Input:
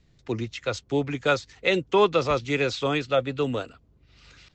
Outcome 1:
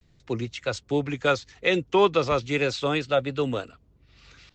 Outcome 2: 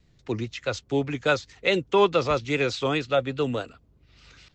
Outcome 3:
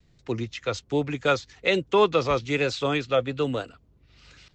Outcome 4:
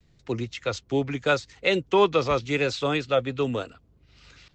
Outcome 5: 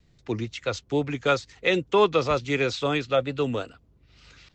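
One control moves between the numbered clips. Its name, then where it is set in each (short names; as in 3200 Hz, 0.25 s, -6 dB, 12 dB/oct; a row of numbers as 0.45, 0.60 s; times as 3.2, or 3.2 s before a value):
vibrato, rate: 0.42, 4.8, 1.2, 0.81, 2.2 Hz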